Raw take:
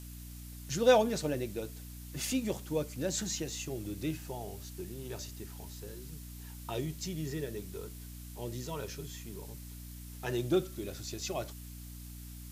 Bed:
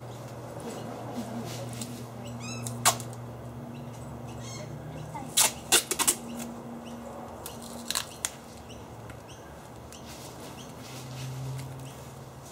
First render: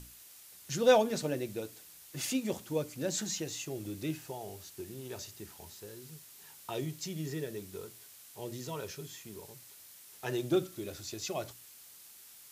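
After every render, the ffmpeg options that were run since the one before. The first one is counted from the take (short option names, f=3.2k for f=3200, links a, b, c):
-af "bandreject=f=60:t=h:w=6,bandreject=f=120:t=h:w=6,bandreject=f=180:t=h:w=6,bandreject=f=240:t=h:w=6,bandreject=f=300:t=h:w=6"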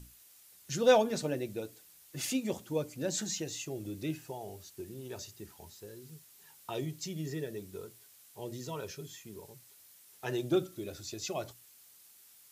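-af "afftdn=nr=6:nf=-54"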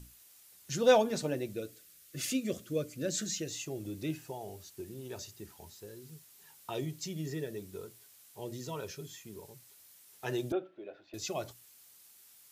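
-filter_complex "[0:a]asettb=1/sr,asplit=3[a][b][c];[a]atrim=end=1.544[d];[b]atrim=start=1.54:end=3.51,asetpts=PTS-STARTPTS,afade=t=in:d=0.004:c=qsin,afade=t=out:st=1.966:d=0.004:c=qsin,asuperstop=centerf=870:order=4:qfactor=1.9[e];[c]atrim=start=3.506[f];[d][e]acrossfade=d=0.004:c1=hsin:c2=qsin[g];[g][f]acrossfade=d=0.004:c1=qsin:c2=hsin,asettb=1/sr,asplit=3[h][i][j];[h]atrim=end=10.524[k];[i]atrim=start=10.52:end=11.14,asetpts=PTS-STARTPTS,afade=t=in:d=0.004:c=qsin,afade=t=out:st=0.616:d=0.004:c=qsin,highpass=470,equalizer=f=660:t=q:w=4:g=4,equalizer=f=1.2k:t=q:w=4:g=-8,equalizer=f=2.1k:t=q:w=4:g=-6,lowpass=f=2.4k:w=0.5412,lowpass=f=2.4k:w=1.3066[l];[j]atrim=start=11.136[m];[k][l]acrossfade=d=0.004:c1=hsin:c2=qsin[n];[n][m]acrossfade=d=0.004:c1=qsin:c2=hsin"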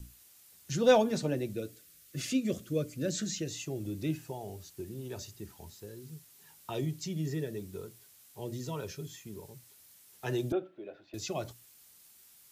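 -filter_complex "[0:a]acrossover=split=280|970|7400[a][b][c][d];[a]acontrast=30[e];[d]alimiter=level_in=18.5dB:limit=-24dB:level=0:latency=1:release=228,volume=-18.5dB[f];[e][b][c][f]amix=inputs=4:normalize=0"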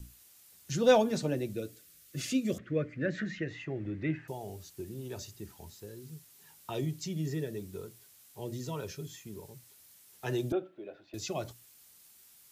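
-filter_complex "[0:a]asettb=1/sr,asplit=3[a][b][c];[a]atrim=end=2.584[d];[b]atrim=start=2.58:end=4.28,asetpts=PTS-STARTPTS,afade=t=in:d=0.004:c=qsin,afade=t=out:st=1.696:d=0.004:c=qsin,lowpass=f=1.9k:t=q:w=4.7[e];[c]atrim=start=4.276[f];[d][e]acrossfade=d=0.004:c1=hsin:c2=qsin[g];[g][f]acrossfade=d=0.004:c1=qsin:c2=hsin"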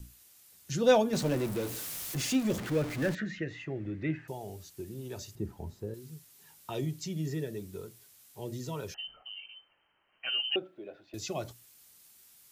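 -filter_complex "[0:a]asettb=1/sr,asplit=3[a][b][c];[a]atrim=end=1.134[d];[b]atrim=start=1.13:end=3.15,asetpts=PTS-STARTPTS,afade=t=in:d=0.004:c=qsin,afade=t=out:st=2.016:d=0.004:c=qsin,aeval=exprs='val(0)+0.5*0.02*sgn(val(0))':c=same[e];[c]atrim=start=3.146[f];[d][e]acrossfade=d=0.004:c1=hsin:c2=qsin[g];[g][f]acrossfade=d=0.004:c1=qsin:c2=hsin,asettb=1/sr,asplit=3[h][i][j];[h]atrim=end=5.354[k];[i]atrim=start=5.35:end=5.94,asetpts=PTS-STARTPTS,afade=t=in:d=0.004:c=qsin,afade=t=out:st=0.586:d=0.004:c=qsin,tiltshelf=f=1.4k:g=9.5[l];[j]atrim=start=5.936[m];[k][l]acrossfade=d=0.004:c1=hsin:c2=qsin[n];[n][m]acrossfade=d=0.004:c1=qsin:c2=hsin,asettb=1/sr,asplit=3[o][p][q];[o]atrim=end=8.944[r];[p]atrim=start=8.94:end=10.56,asetpts=PTS-STARTPTS,afade=t=in:d=0.004:c=qsin,afade=t=out:st=1.616:d=0.004:c=qsin,lowpass=f=2.7k:t=q:w=0.5098,lowpass=f=2.7k:t=q:w=0.6013,lowpass=f=2.7k:t=q:w=0.9,lowpass=f=2.7k:t=q:w=2.563,afreqshift=-3200[s];[q]atrim=start=10.556[t];[r][s]acrossfade=d=0.004:c1=hsin:c2=qsin[u];[u][t]acrossfade=d=0.004:c1=qsin:c2=hsin"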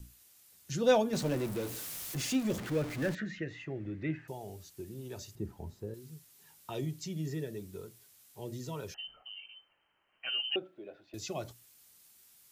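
-af "volume=-2.5dB"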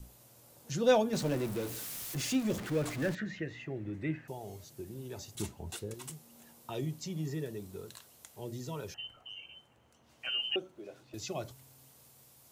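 -filter_complex "[1:a]volume=-22.5dB[a];[0:a][a]amix=inputs=2:normalize=0"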